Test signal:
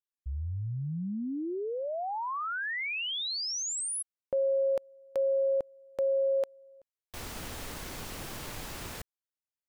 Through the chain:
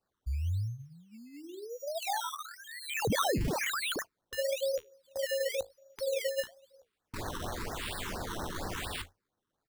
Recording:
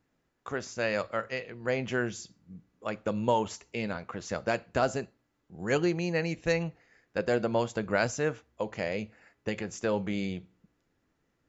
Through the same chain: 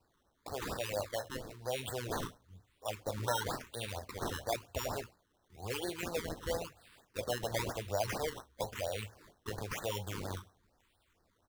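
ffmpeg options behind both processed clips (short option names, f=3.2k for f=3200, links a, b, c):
-filter_complex "[0:a]acrossover=split=1400[a][b];[b]acompressor=threshold=-44dB:ratio=5:attack=0.51:release=135:detection=peak[c];[a][c]amix=inputs=2:normalize=0,firequalizer=gain_entry='entry(100,0);entry(150,-22);entry(760,3);entry(1300,-6)':delay=0.05:min_phase=1,acrossover=split=130[d][e];[e]acompressor=threshold=-25dB:ratio=6:attack=3.5:release=27:knee=2.83:detection=peak[f];[d][f]amix=inputs=2:normalize=0,highshelf=f=2.3k:t=q:w=3:g=13.5,asplit=2[g][h];[h]alimiter=level_in=5dB:limit=-24dB:level=0:latency=1:release=80,volume=-5dB,volume=1.5dB[i];[g][i]amix=inputs=2:normalize=0,flanger=delay=9.4:depth=10:regen=-56:speed=1.5:shape=sinusoidal,acrusher=samples=13:mix=1:aa=0.000001:lfo=1:lforange=13:lforate=0.98,afftfilt=real='re*(1-between(b*sr/1024,600*pow(2800/600,0.5+0.5*sin(2*PI*4.3*pts/sr))/1.41,600*pow(2800/600,0.5+0.5*sin(2*PI*4.3*pts/sr))*1.41))':imag='im*(1-between(b*sr/1024,600*pow(2800/600,0.5+0.5*sin(2*PI*4.3*pts/sr))/1.41,600*pow(2800/600,0.5+0.5*sin(2*PI*4.3*pts/sr))*1.41))':win_size=1024:overlap=0.75"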